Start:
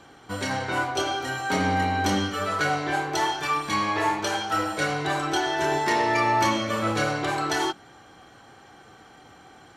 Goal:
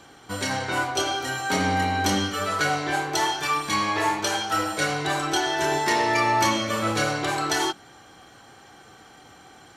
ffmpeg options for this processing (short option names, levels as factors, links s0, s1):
-af "highshelf=f=3800:g=7"